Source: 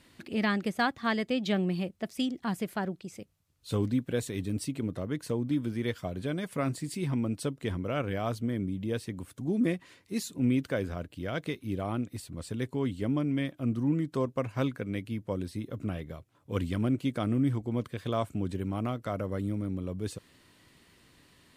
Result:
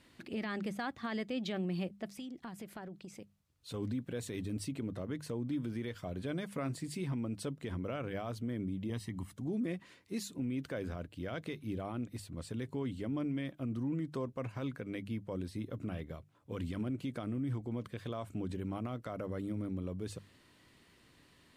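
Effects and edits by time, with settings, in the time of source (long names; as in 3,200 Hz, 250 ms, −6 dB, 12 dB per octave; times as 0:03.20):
0:02.11–0:03.74: downward compressor 8 to 1, threshold −38 dBFS
0:08.90–0:09.33: comb filter 1 ms
whole clip: high-shelf EQ 6,500 Hz −4.5 dB; mains-hum notches 50/100/150/200 Hz; brickwall limiter −26 dBFS; level −3 dB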